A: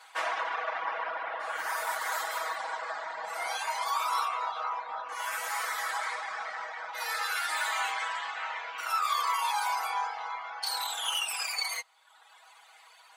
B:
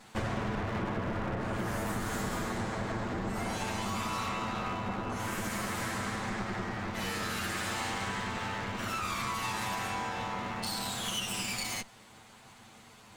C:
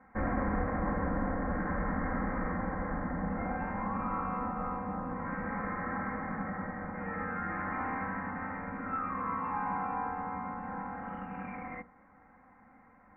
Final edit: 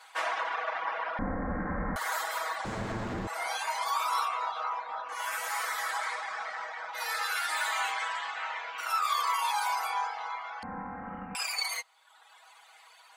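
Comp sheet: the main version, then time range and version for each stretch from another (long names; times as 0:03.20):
A
0:01.19–0:01.96: punch in from C
0:02.65–0:03.27: punch in from B
0:10.63–0:11.35: punch in from C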